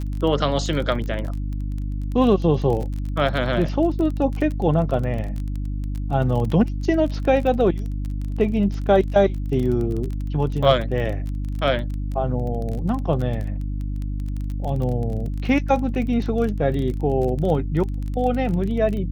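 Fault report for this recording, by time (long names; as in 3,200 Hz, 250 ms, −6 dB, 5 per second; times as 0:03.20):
surface crackle 23 per second −27 dBFS
mains hum 50 Hz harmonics 6 −26 dBFS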